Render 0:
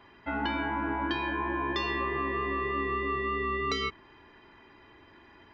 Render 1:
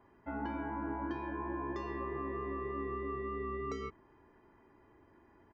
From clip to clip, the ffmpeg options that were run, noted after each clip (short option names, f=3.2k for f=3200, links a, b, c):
-af "firequalizer=gain_entry='entry(490,0);entry(3700,-22);entry(6400,-4)':delay=0.05:min_phase=1,volume=-5.5dB"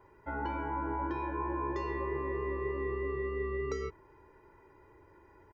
-af "aecho=1:1:2.1:0.66,volume=2.5dB"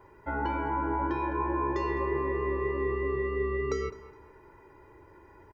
-filter_complex "[0:a]asplit=2[a][b];[b]adelay=207,lowpass=f=4.8k:p=1,volume=-16.5dB,asplit=2[c][d];[d]adelay=207,lowpass=f=4.8k:p=1,volume=0.3,asplit=2[e][f];[f]adelay=207,lowpass=f=4.8k:p=1,volume=0.3[g];[a][c][e][g]amix=inputs=4:normalize=0,volume=5dB"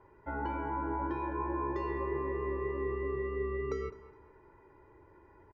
-af "aemphasis=mode=reproduction:type=75kf,volume=-4.5dB"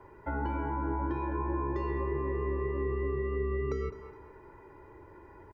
-filter_complex "[0:a]acrossover=split=250[a][b];[b]acompressor=threshold=-43dB:ratio=3[c];[a][c]amix=inputs=2:normalize=0,volume=7dB"